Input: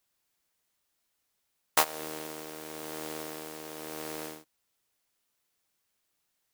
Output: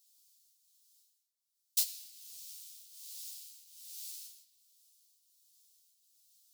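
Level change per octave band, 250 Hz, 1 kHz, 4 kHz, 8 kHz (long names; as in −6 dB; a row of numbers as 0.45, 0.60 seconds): below −40 dB, below −40 dB, −4.0 dB, −2.0 dB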